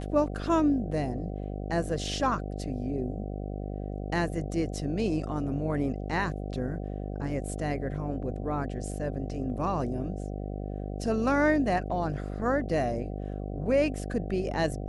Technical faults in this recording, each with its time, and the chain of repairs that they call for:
buzz 50 Hz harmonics 15 -35 dBFS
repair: de-hum 50 Hz, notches 15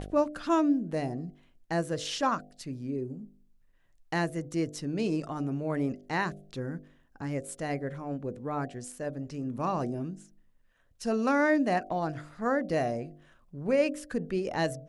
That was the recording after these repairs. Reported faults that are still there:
nothing left

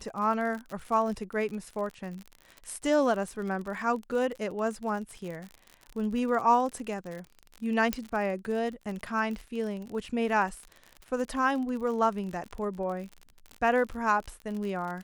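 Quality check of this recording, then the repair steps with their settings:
crackle 48 per s -35 dBFS
7.93 s: pop -12 dBFS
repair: de-click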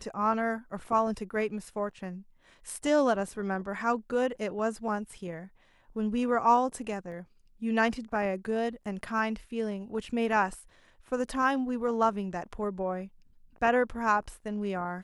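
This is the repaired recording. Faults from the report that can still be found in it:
nothing left

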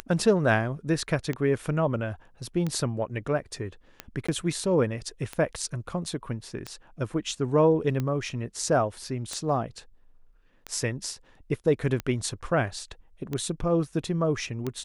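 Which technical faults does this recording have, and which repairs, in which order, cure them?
tick 45 rpm -17 dBFS
4.27–4.29 s: dropout 15 ms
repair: de-click; interpolate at 4.27 s, 15 ms

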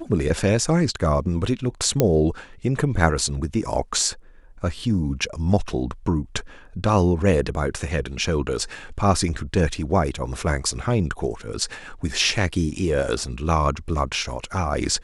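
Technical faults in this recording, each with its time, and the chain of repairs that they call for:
2.00 s: pop -4 dBFS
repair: de-click

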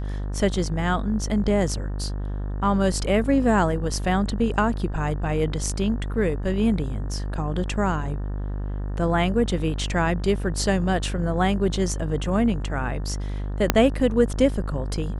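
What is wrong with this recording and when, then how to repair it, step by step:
buzz 50 Hz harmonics 37 -28 dBFS
13.70 s: pop -1 dBFS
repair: de-click; de-hum 50 Hz, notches 37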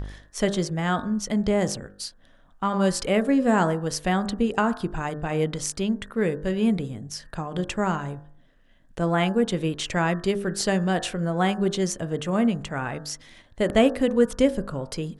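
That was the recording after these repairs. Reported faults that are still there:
13.70 s: pop

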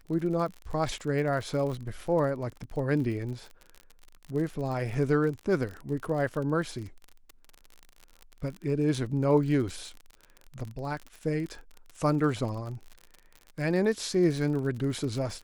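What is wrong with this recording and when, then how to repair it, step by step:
crackle 48 per s -35 dBFS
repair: de-click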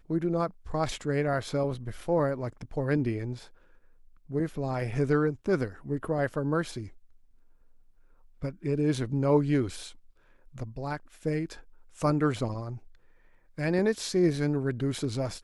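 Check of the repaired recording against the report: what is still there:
nothing left

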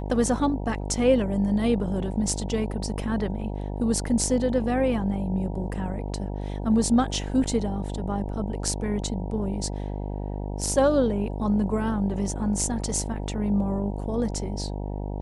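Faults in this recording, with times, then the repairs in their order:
buzz 50 Hz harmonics 19 -31 dBFS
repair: de-hum 50 Hz, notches 19

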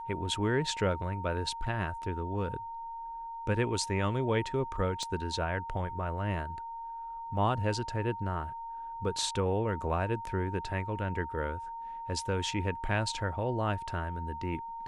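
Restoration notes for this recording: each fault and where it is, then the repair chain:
whine 920 Hz -38 dBFS
5.03 s: pop -26 dBFS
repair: de-click; band-stop 920 Hz, Q 30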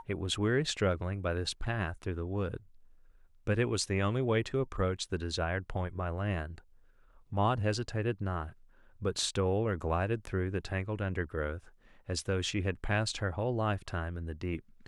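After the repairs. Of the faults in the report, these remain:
5.03 s: pop

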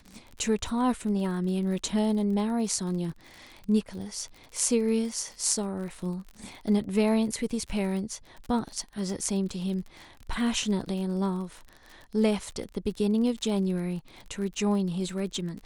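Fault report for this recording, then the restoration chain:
crackle 41 per s -36 dBFS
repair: de-click

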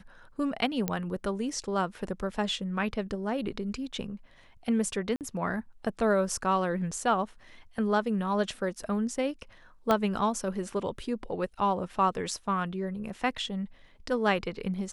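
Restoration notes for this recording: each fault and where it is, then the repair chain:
0.88 s: pop -14 dBFS
5.16–5.21 s: dropout 48 ms
9.91 s: pop -12 dBFS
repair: de-click; interpolate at 5.16 s, 48 ms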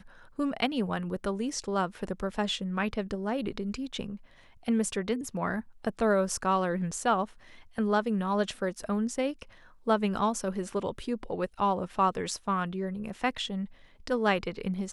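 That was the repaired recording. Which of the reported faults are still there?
9.91 s: pop

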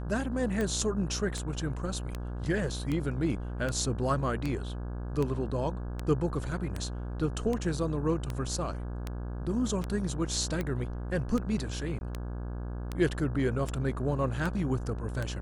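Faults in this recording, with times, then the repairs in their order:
buzz 60 Hz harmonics 28 -36 dBFS
tick 78 rpm -19 dBFS
11.99–12.01 s: dropout 21 ms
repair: de-click; de-hum 60 Hz, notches 28; interpolate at 11.99 s, 21 ms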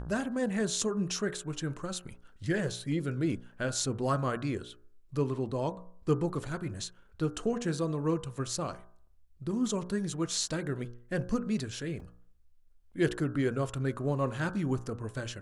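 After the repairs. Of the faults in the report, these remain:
nothing left

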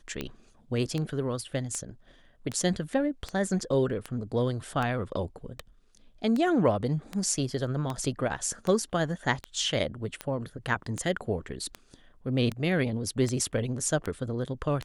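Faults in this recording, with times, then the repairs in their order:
tick 78 rpm -18 dBFS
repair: de-click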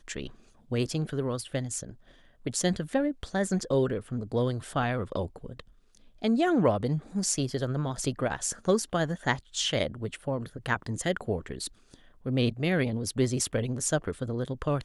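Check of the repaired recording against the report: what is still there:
nothing left

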